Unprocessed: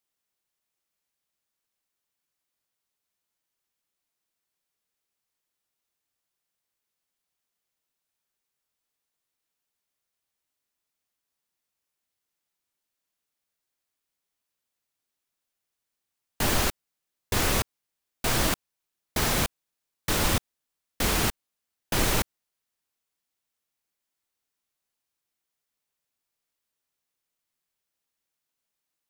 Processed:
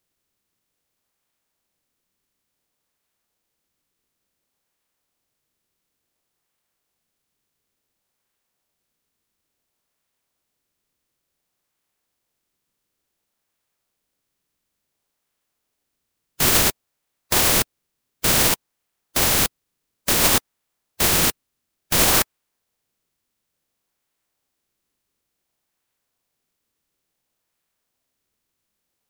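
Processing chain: spectral contrast reduction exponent 0.26; in parallel at -9.5 dB: decimation with a swept rate 31×, swing 160% 0.57 Hz; on the sum: trim +6 dB

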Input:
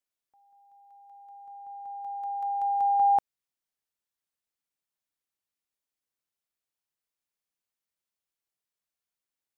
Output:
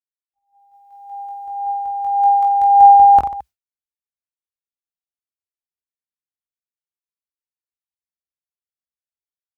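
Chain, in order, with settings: peaking EQ 64 Hz +14.5 dB 1 oct; reverse bouncing-ball echo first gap 20 ms, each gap 1.4×, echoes 5; expander -47 dBFS; level rider gain up to 14 dB; phaser 0.35 Hz, delay 3 ms, feedback 36%

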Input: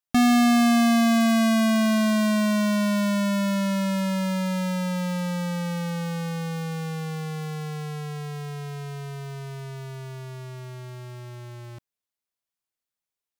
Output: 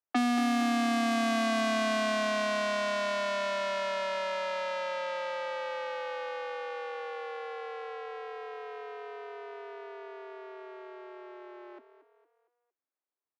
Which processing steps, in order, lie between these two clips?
tracing distortion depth 0.046 ms; steep high-pass 240 Hz 96 dB/octave; treble shelf 6.9 kHz -9 dB; compression 6:1, threshold -25 dBFS, peak gain reduction 7.5 dB; frequency-shifting echo 229 ms, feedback 43%, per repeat +31 Hz, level -12 dB; level-controlled noise filter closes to 1.5 kHz, open at -22.5 dBFS

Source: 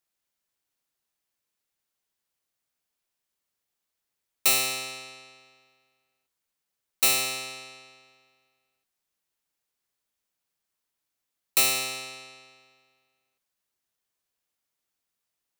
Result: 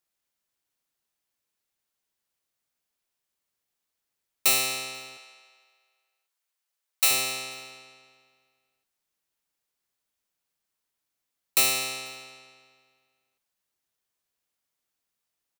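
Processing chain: 5.17–7.11 s: Bessel high-pass 660 Hz, order 8; on a send: frequency-shifting echo 244 ms, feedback 37%, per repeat +59 Hz, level -24 dB

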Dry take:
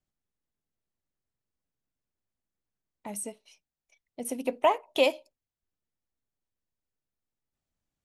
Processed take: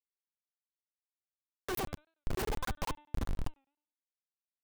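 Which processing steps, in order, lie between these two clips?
Doppler pass-by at 3.20 s, 15 m/s, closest 3 m; bit crusher 9-bit; speed mistake 45 rpm record played at 78 rpm; echo that smears into a reverb 638 ms, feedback 48%, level -13 dB; Schmitt trigger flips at -47.5 dBFS; bass shelf 260 Hz +6.5 dB; de-hum 297.3 Hz, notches 13; crackling interface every 0.10 s, samples 1024, zero; warped record 45 rpm, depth 160 cents; trim +14.5 dB

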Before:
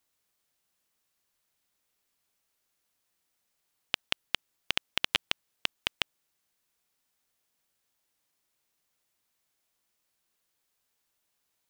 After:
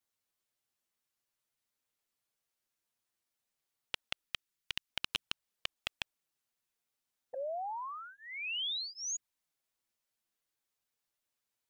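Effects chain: 4.23–4.88 s: peaking EQ 620 Hz -6.5 dB -> -14.5 dB 1.4 oct; 7.33–9.17 s: painted sound rise 500–6900 Hz -30 dBFS; touch-sensitive flanger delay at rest 8.8 ms, full sweep at -28 dBFS; trim -5.5 dB

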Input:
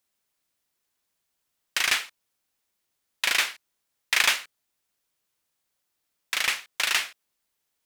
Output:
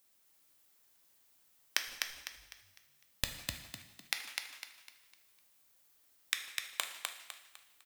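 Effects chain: 1.87–3.44 s: comb filter that takes the minimum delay 9.5 ms; treble shelf 11 kHz +8 dB; inverted gate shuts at -17 dBFS, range -34 dB; frequency-shifting echo 252 ms, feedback 36%, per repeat +46 Hz, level -4 dB; two-slope reverb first 0.75 s, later 2.1 s, DRR 6.5 dB; trim +3 dB

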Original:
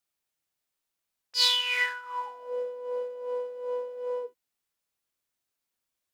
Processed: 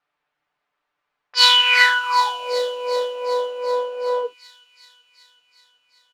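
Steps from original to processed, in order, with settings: level-controlled noise filter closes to 2.9 kHz, open at -26 dBFS; peaking EQ 1.1 kHz +13 dB 2.8 oct; comb 6.8 ms, depth 61%; on a send: feedback echo behind a high-pass 378 ms, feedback 70%, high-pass 5.2 kHz, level -6 dB; on the sum: trim +3.5 dB

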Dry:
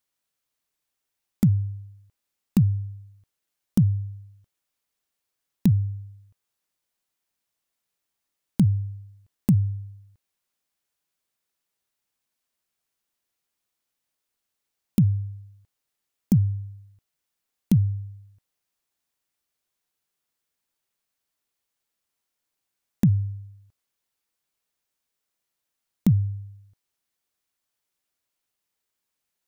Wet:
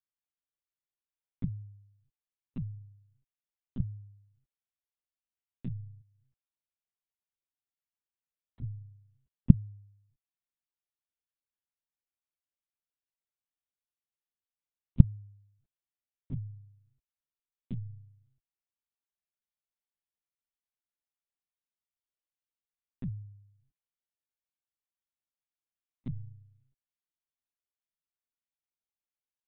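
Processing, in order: 6.01–8.62 s: compression, threshold -47 dBFS, peak gain reduction 28.5 dB; monotone LPC vocoder at 8 kHz 130 Hz; trim -18 dB

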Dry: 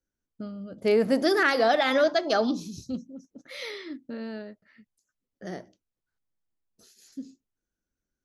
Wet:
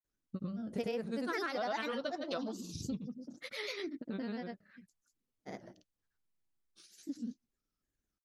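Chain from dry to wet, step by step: peaking EQ 550 Hz -3 dB 0.77 oct; compression 5:1, threshold -34 dBFS, peak gain reduction 14 dB; granulator 100 ms, pitch spread up and down by 3 st

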